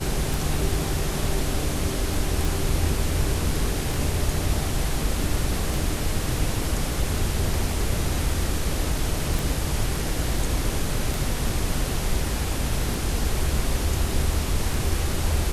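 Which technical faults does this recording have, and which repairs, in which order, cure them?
tick 33 1/3 rpm
2.45 s: pop
9.39 s: pop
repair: de-click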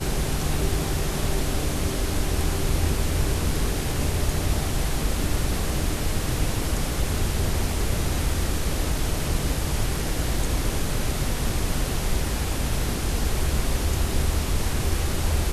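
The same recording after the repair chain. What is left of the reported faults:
nothing left

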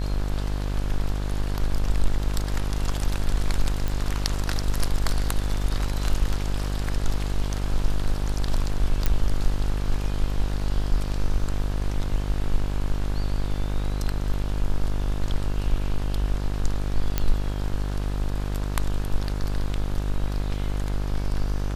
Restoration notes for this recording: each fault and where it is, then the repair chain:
buzz 50 Hz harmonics 35 -27 dBFS
3.88 s: pop
9.06 s: pop
17.18 s: pop -8 dBFS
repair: de-click; de-hum 50 Hz, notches 35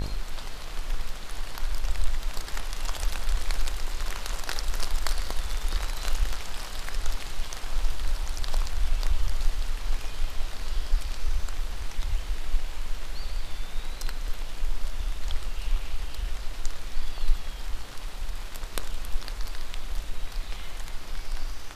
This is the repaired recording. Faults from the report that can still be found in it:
nothing left

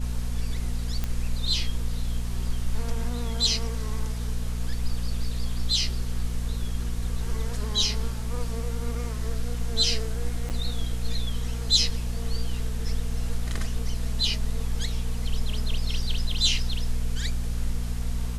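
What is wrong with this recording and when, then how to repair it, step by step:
hum 60 Hz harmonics 4 -30 dBFS
1.04 s: pop -14 dBFS
10.49–10.50 s: dropout 8.9 ms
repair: de-click; de-hum 60 Hz, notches 4; interpolate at 10.49 s, 8.9 ms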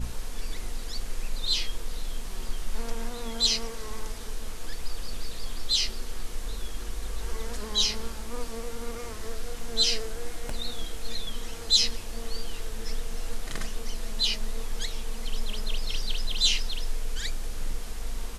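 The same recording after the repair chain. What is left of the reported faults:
nothing left

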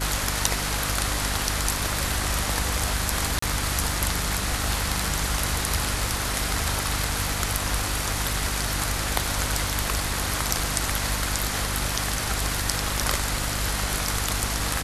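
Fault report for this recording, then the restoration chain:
hum 50 Hz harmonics 6 -31 dBFS
3.39–3.42 s: dropout 34 ms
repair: de-hum 50 Hz, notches 6; interpolate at 3.39 s, 34 ms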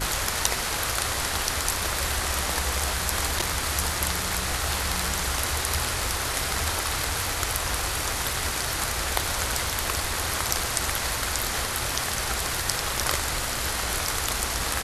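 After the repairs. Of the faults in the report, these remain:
nothing left

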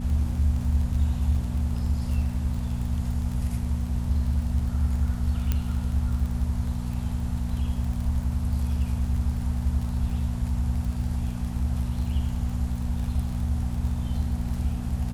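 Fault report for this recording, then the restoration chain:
crackle 28 per s -32 dBFS
hum 60 Hz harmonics 4 -30 dBFS
5.52 s: pop -12 dBFS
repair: de-click; de-hum 60 Hz, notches 4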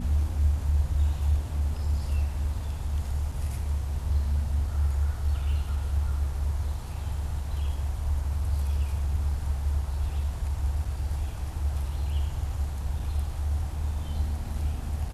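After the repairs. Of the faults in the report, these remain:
5.52 s: pop

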